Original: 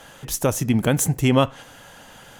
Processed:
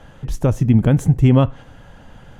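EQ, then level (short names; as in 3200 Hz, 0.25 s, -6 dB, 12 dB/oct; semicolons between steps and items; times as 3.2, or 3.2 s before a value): RIAA curve playback; -2.5 dB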